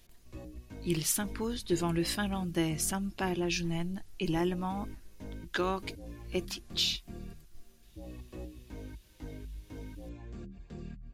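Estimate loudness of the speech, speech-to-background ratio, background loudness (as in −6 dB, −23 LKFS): −33.0 LKFS, 14.5 dB, −47.5 LKFS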